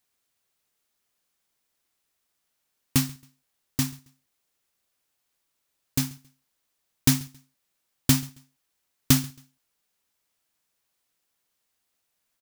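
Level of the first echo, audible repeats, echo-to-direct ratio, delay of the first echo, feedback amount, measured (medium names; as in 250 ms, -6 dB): -23.5 dB, 2, -23.0 dB, 136 ms, 27%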